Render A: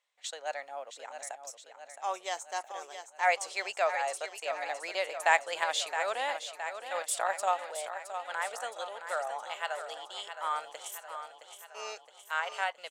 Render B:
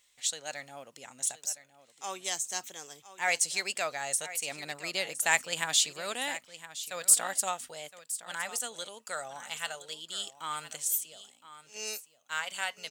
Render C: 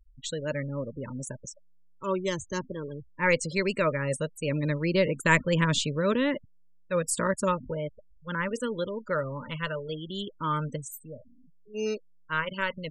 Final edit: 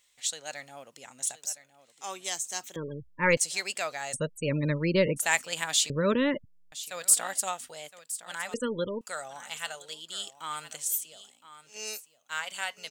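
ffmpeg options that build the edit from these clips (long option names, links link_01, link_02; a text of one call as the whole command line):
ffmpeg -i take0.wav -i take1.wav -i take2.wav -filter_complex "[2:a]asplit=4[link_01][link_02][link_03][link_04];[1:a]asplit=5[link_05][link_06][link_07][link_08][link_09];[link_05]atrim=end=2.762[link_10];[link_01]atrim=start=2.758:end=3.372[link_11];[link_06]atrim=start=3.368:end=4.15[link_12];[link_02]atrim=start=4.13:end=5.18[link_13];[link_07]atrim=start=5.16:end=5.902[link_14];[link_03]atrim=start=5.898:end=6.722[link_15];[link_08]atrim=start=6.718:end=8.542[link_16];[link_04]atrim=start=8.538:end=9.012[link_17];[link_09]atrim=start=9.008[link_18];[link_10][link_11]acrossfade=duration=0.004:curve1=hsin:curve2=hsin[link_19];[link_19][link_12]acrossfade=duration=0.004:curve1=hsin:curve2=hsin[link_20];[link_20][link_13]acrossfade=duration=0.02:curve1=tri:curve2=tri[link_21];[link_21][link_14]acrossfade=duration=0.02:curve1=tri:curve2=tri[link_22];[link_22][link_15]acrossfade=duration=0.004:curve1=hsin:curve2=hsin[link_23];[link_23][link_16]acrossfade=duration=0.004:curve1=hsin:curve2=hsin[link_24];[link_24][link_17]acrossfade=duration=0.004:curve1=hsin:curve2=hsin[link_25];[link_25][link_18]acrossfade=duration=0.004:curve1=hsin:curve2=hsin" out.wav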